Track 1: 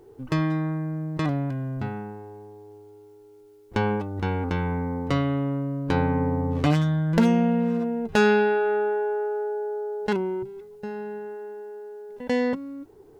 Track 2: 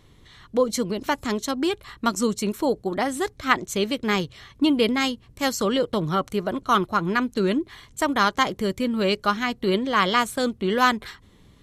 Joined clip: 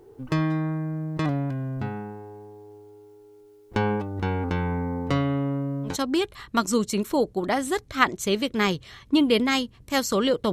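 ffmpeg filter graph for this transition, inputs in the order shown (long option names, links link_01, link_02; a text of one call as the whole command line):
ffmpeg -i cue0.wav -i cue1.wav -filter_complex "[0:a]apad=whole_dur=10.52,atrim=end=10.52,atrim=end=5.97,asetpts=PTS-STARTPTS[link_01];[1:a]atrim=start=1.32:end=6.01,asetpts=PTS-STARTPTS[link_02];[link_01][link_02]acrossfade=duration=0.14:curve1=tri:curve2=tri" out.wav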